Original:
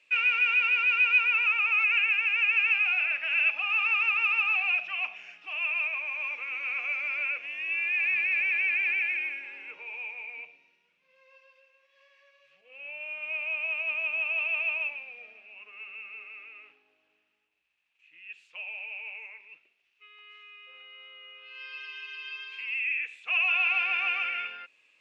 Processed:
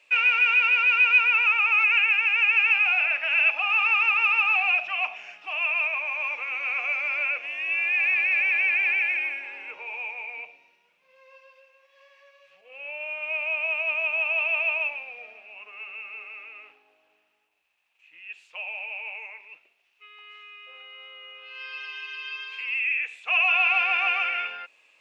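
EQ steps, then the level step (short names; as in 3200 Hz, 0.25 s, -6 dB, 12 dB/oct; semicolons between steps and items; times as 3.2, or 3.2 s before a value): bell 760 Hz +11 dB 1.6 oct; high shelf 3800 Hz +7.5 dB; 0.0 dB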